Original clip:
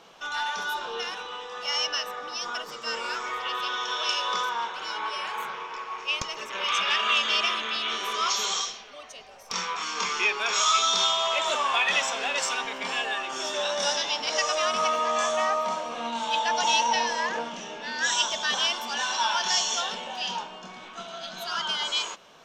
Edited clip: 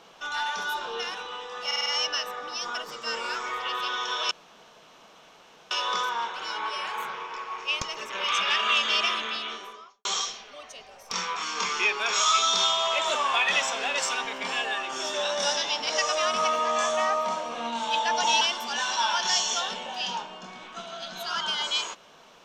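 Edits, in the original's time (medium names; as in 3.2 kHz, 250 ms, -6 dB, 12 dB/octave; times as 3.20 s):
1.66 s: stutter 0.05 s, 5 plays
4.11 s: insert room tone 1.40 s
7.57–8.45 s: studio fade out
16.81–18.62 s: delete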